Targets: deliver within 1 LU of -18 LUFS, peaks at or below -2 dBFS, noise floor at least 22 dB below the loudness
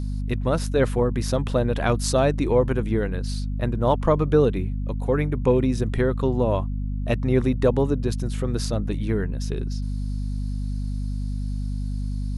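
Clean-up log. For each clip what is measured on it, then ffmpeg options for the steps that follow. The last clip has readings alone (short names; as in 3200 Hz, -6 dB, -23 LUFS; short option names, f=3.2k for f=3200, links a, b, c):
hum 50 Hz; harmonics up to 250 Hz; hum level -24 dBFS; loudness -24.0 LUFS; peak -6.5 dBFS; loudness target -18.0 LUFS
-> -af "bandreject=f=50:t=h:w=6,bandreject=f=100:t=h:w=6,bandreject=f=150:t=h:w=6,bandreject=f=200:t=h:w=6,bandreject=f=250:t=h:w=6"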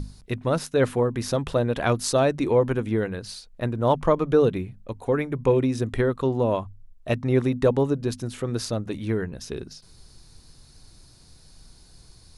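hum none; loudness -24.5 LUFS; peak -7.5 dBFS; loudness target -18.0 LUFS
-> -af "volume=6.5dB,alimiter=limit=-2dB:level=0:latency=1"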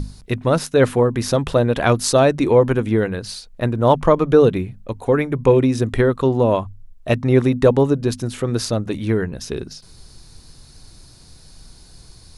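loudness -18.0 LUFS; peak -2.0 dBFS; noise floor -46 dBFS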